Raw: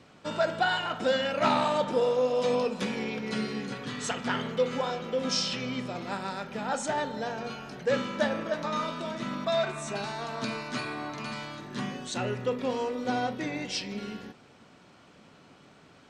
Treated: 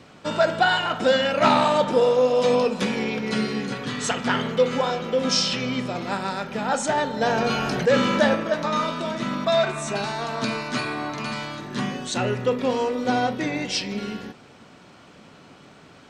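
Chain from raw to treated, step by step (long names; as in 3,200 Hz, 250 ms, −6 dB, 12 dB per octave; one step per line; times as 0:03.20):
0:07.21–0:08.35: envelope flattener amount 50%
level +7 dB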